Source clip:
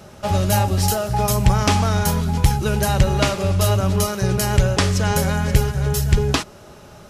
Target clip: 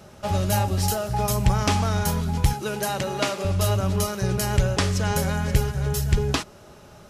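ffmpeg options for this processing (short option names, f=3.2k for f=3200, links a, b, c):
-filter_complex "[0:a]asettb=1/sr,asplit=3[a][b][c];[a]atrim=end=2.534[d];[b]atrim=start=2.53:end=3.45,asetpts=PTS-STARTPTS,afade=t=in:d=0.004:c=qsin,afade=t=out:st=0.916:d=0.004:c=qsin,highpass=230[e];[c]atrim=start=3.446[f];[d][e]acrossfade=d=0.004:c1=hsin:c2=qsin[g];[g][f]acrossfade=d=0.004:c1=qsin:c2=hsin,volume=-4.5dB"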